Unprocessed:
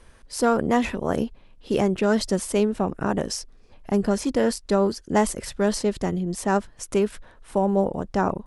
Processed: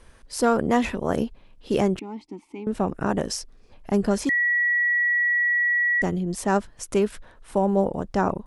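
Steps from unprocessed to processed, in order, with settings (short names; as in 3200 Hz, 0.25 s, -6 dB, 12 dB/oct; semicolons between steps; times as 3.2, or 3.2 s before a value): 1.99–2.67 vowel filter u; 4.29–6.02 bleep 1930 Hz -18.5 dBFS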